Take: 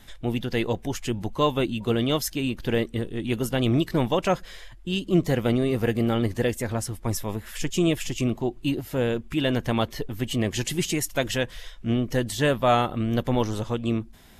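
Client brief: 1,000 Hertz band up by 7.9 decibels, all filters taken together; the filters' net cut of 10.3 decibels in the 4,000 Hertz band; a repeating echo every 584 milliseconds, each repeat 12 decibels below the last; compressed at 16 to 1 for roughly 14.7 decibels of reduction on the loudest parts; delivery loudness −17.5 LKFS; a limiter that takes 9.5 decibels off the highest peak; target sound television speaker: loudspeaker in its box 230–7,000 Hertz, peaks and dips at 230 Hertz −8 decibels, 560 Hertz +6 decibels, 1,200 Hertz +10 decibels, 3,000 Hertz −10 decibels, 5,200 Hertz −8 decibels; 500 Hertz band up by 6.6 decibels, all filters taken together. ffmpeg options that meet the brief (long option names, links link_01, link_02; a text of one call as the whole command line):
ffmpeg -i in.wav -af "equalizer=frequency=500:width_type=o:gain=3.5,equalizer=frequency=1000:width_type=o:gain=4,equalizer=frequency=4000:width_type=o:gain=-5.5,acompressor=threshold=-27dB:ratio=16,alimiter=level_in=2dB:limit=-24dB:level=0:latency=1,volume=-2dB,highpass=frequency=230:width=0.5412,highpass=frequency=230:width=1.3066,equalizer=frequency=230:width_type=q:width=4:gain=-8,equalizer=frequency=560:width_type=q:width=4:gain=6,equalizer=frequency=1200:width_type=q:width=4:gain=10,equalizer=frequency=3000:width_type=q:width=4:gain=-10,equalizer=frequency=5200:width_type=q:width=4:gain=-8,lowpass=frequency=7000:width=0.5412,lowpass=frequency=7000:width=1.3066,aecho=1:1:584|1168|1752:0.251|0.0628|0.0157,volume=19.5dB" out.wav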